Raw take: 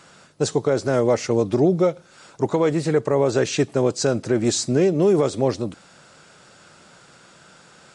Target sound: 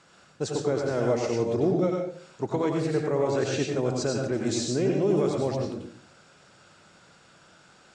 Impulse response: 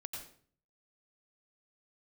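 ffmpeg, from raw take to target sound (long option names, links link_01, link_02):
-filter_complex "[0:a]lowpass=8000[link_01];[1:a]atrim=start_sample=2205[link_02];[link_01][link_02]afir=irnorm=-1:irlink=0,volume=-3.5dB"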